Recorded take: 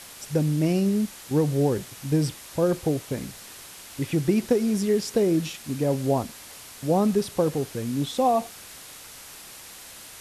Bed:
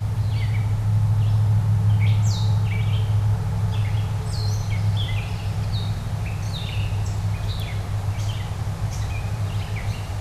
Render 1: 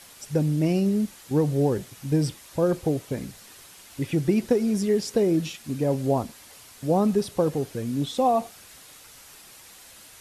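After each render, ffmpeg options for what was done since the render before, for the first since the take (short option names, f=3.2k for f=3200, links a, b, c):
-af "afftdn=nr=6:nf=-44"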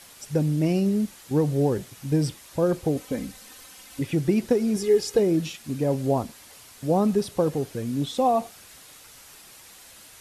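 -filter_complex "[0:a]asettb=1/sr,asplit=3[a][b][c];[a]atrim=end=2.964[d];[b]atrim=start=2.96:end=4.01,asetpts=PTS-STARTPTS,afade=t=in:d=0.004:c=qsin,afade=t=out:st=1.046:d=0.004:c=qsin,aecho=1:1:3.9:0.65,atrim=end_sample=46305[e];[c]atrim=start=4.006[f];[d][e]acrossfade=d=0.004:c1=hsin:c2=qsin[g];[g][f]acrossfade=d=0.004:c1=qsin:c2=hsin,asettb=1/sr,asplit=3[h][i][j];[h]atrim=end=4.764[k];[i]atrim=start=4.76:end=5.19,asetpts=PTS-STARTPTS,afade=t=in:d=0.004:c=qsin,afade=t=out:st=0.426:d=0.004:c=qsin,aecho=1:1:2.4:0.65,atrim=end_sample=18963[l];[j]atrim=start=5.186[m];[k][l]acrossfade=d=0.004:c1=hsin:c2=qsin[n];[n][m]acrossfade=d=0.004:c1=qsin:c2=hsin"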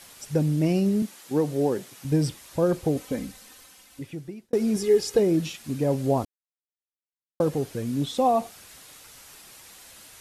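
-filter_complex "[0:a]asettb=1/sr,asplit=3[a][b][c];[a]atrim=end=1.024[d];[b]atrim=start=1.02:end=2.05,asetpts=PTS-STARTPTS,afade=t=in:d=0.004:c=qsin,afade=t=out:st=1.026:d=0.004:c=qsin,highpass=210[e];[c]atrim=start=2.046[f];[d][e]acrossfade=d=0.004:c1=hsin:c2=qsin[g];[g][f]acrossfade=d=0.004:c1=qsin:c2=hsin,asplit=4[h][i][j][k];[h]atrim=end=4.53,asetpts=PTS-STARTPTS,afade=t=out:st=3.08:d=1.45[l];[i]atrim=start=4.53:end=6.25,asetpts=PTS-STARTPTS,afade=t=in:d=0.004:c=hsin,afade=t=out:st=1.716:d=0.004:c=hsin[m];[j]atrim=start=6.25:end=7.4,asetpts=PTS-STARTPTS,volume=0[n];[k]atrim=start=7.4,asetpts=PTS-STARTPTS,afade=t=in:d=0.004:c=hsin[o];[l][m][n][o]concat=n=4:v=0:a=1"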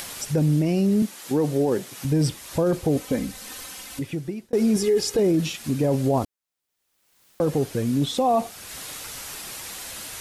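-filter_complex "[0:a]asplit=2[a][b];[b]acompressor=mode=upward:threshold=-25dB:ratio=2.5,volume=-2dB[c];[a][c]amix=inputs=2:normalize=0,alimiter=limit=-13.5dB:level=0:latency=1:release=14"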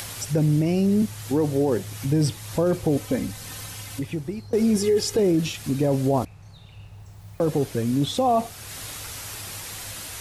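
-filter_complex "[1:a]volume=-19.5dB[a];[0:a][a]amix=inputs=2:normalize=0"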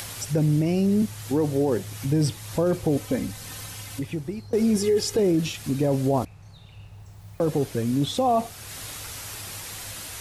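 -af "volume=-1dB"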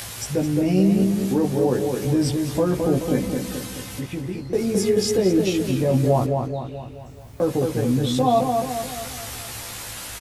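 -filter_complex "[0:a]asplit=2[a][b];[b]adelay=16,volume=-2dB[c];[a][c]amix=inputs=2:normalize=0,asplit=2[d][e];[e]adelay=215,lowpass=f=2.6k:p=1,volume=-4dB,asplit=2[f][g];[g]adelay=215,lowpass=f=2.6k:p=1,volume=0.52,asplit=2[h][i];[i]adelay=215,lowpass=f=2.6k:p=1,volume=0.52,asplit=2[j][k];[k]adelay=215,lowpass=f=2.6k:p=1,volume=0.52,asplit=2[l][m];[m]adelay=215,lowpass=f=2.6k:p=1,volume=0.52,asplit=2[n][o];[o]adelay=215,lowpass=f=2.6k:p=1,volume=0.52,asplit=2[p][q];[q]adelay=215,lowpass=f=2.6k:p=1,volume=0.52[r];[d][f][h][j][l][n][p][r]amix=inputs=8:normalize=0"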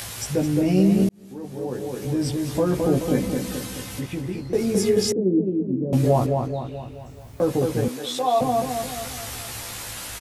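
-filter_complex "[0:a]asettb=1/sr,asplit=3[a][b][c];[a]atrim=end=5.124[d];[b]atrim=start=5.12:end=5.93,asetpts=PTS-STARTPTS,afade=t=in:d=0.004:c=qsin,afade=t=out:st=0.806:d=0.004:c=qsin,asuperpass=centerf=250:order=4:qfactor=1.1[e];[c]atrim=start=5.926[f];[d][e]acrossfade=d=0.004:c1=hsin:c2=qsin[g];[g][f]acrossfade=d=0.004:c1=qsin:c2=hsin,asettb=1/sr,asplit=3[h][i][j];[h]atrim=end=7.884[k];[i]atrim=start=7.88:end=8.41,asetpts=PTS-STARTPTS,afade=t=in:d=0.004:c=qsin,afade=t=out:st=0.526:d=0.004:c=qsin,highpass=550[l];[j]atrim=start=8.406[m];[k][l]acrossfade=d=0.004:c1=hsin:c2=qsin[n];[n][m]acrossfade=d=0.004:c1=qsin:c2=hsin,asplit=2[o][p];[o]atrim=end=1.09,asetpts=PTS-STARTPTS,afade=t=out:st=1.086:d=0.004:c=hsin[q];[p]atrim=start=1.09,asetpts=PTS-STARTPTS,afade=t=in:d=1.7[r];[q][r]concat=n=2:v=0:a=1"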